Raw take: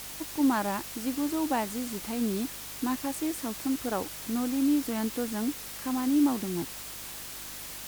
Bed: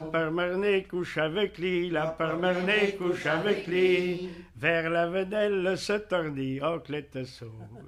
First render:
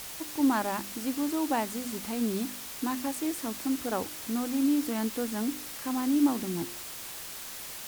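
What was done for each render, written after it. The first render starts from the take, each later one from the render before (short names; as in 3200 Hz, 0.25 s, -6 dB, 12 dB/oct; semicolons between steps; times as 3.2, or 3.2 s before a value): de-hum 50 Hz, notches 7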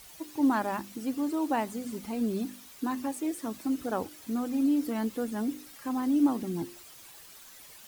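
denoiser 12 dB, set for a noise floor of -41 dBFS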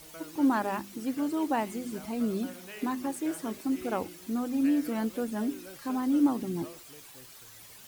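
add bed -20.5 dB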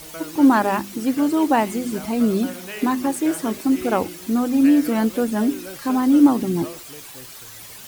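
gain +11 dB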